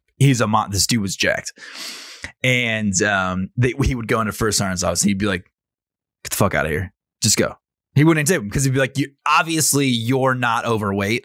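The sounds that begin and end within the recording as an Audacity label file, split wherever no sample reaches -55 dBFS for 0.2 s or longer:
6.240000	6.910000	sound
7.220000	7.580000	sound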